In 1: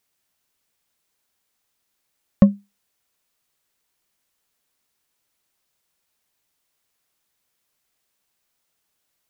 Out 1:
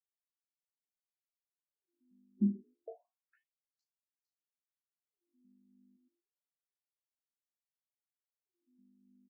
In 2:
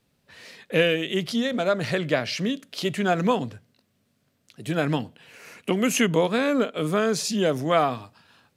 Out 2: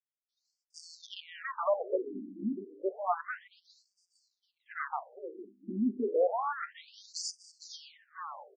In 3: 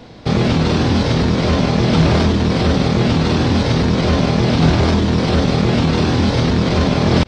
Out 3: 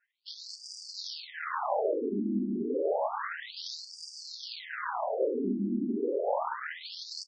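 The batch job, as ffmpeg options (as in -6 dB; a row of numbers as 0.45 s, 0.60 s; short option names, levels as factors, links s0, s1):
-filter_complex "[0:a]afftdn=nr=26:nf=-31,bandreject=f=60:t=h:w=6,bandreject=f=120:t=h:w=6,bandreject=f=180:t=h:w=6,bandreject=f=240:t=h:w=6,bandreject=f=300:t=h:w=6,bandreject=f=360:t=h:w=6,bandreject=f=420:t=h:w=6,bandreject=f=480:t=h:w=6,adynamicequalizer=threshold=0.0178:dfrequency=540:dqfactor=1.5:tfrequency=540:tqfactor=1.5:attack=5:release=100:ratio=0.375:range=3:mode=boostabove:tftype=bell,aeval=exprs='max(val(0),0)':c=same,alimiter=limit=0.266:level=0:latency=1:release=16,aeval=exprs='val(0)+0.00224*(sin(2*PI*50*n/s)+sin(2*PI*2*50*n/s)/2+sin(2*PI*3*50*n/s)/3+sin(2*PI*4*50*n/s)/4+sin(2*PI*5*50*n/s)/5)':c=same,superequalizer=6b=0.501:12b=0.316:13b=0.447,asplit=2[s0][s1];[s1]asplit=4[s2][s3][s4][s5];[s2]adelay=457,afreqshift=-99,volume=0.266[s6];[s3]adelay=914,afreqshift=-198,volume=0.117[s7];[s4]adelay=1371,afreqshift=-297,volume=0.0513[s8];[s5]adelay=1828,afreqshift=-396,volume=0.0226[s9];[s6][s7][s8][s9]amix=inputs=4:normalize=0[s10];[s0][s10]amix=inputs=2:normalize=0,aresample=32000,aresample=44100,afftfilt=real='re*between(b*sr/1024,250*pow(6600/250,0.5+0.5*sin(2*PI*0.3*pts/sr))/1.41,250*pow(6600/250,0.5+0.5*sin(2*PI*0.3*pts/sr))*1.41)':imag='im*between(b*sr/1024,250*pow(6600/250,0.5+0.5*sin(2*PI*0.3*pts/sr))/1.41,250*pow(6600/250,0.5+0.5*sin(2*PI*0.3*pts/sr))*1.41)':win_size=1024:overlap=0.75"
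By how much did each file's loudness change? -16.0 LU, -11.5 LU, -18.0 LU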